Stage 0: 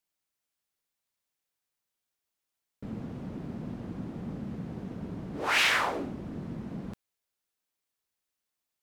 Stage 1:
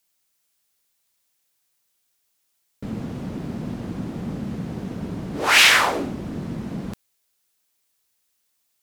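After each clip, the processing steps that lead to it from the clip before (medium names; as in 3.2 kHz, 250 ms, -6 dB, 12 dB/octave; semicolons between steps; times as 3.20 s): treble shelf 3.2 kHz +8 dB; trim +8 dB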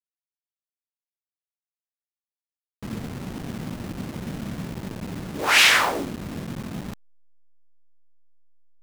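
send-on-delta sampling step -29 dBFS; trim -2 dB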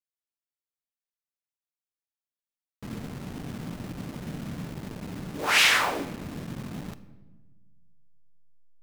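reverberation RT60 1.3 s, pre-delay 7 ms, DRR 11.5 dB; trim -4.5 dB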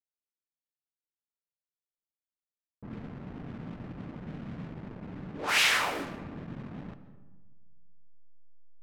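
level-controlled noise filter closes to 660 Hz, open at -24.5 dBFS; algorithmic reverb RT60 1.2 s, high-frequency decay 0.5×, pre-delay 95 ms, DRR 13.5 dB; trim -4.5 dB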